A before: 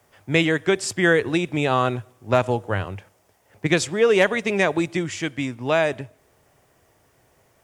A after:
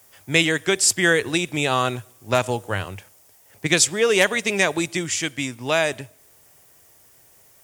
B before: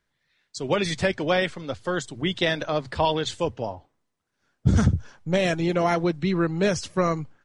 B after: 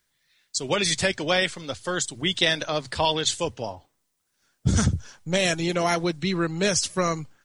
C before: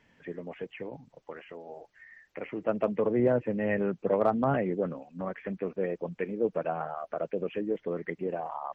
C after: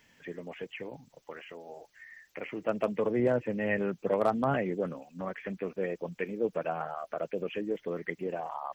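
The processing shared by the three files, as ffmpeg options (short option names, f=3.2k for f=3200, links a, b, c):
-af "crystalizer=i=4.5:c=0,volume=-2.5dB"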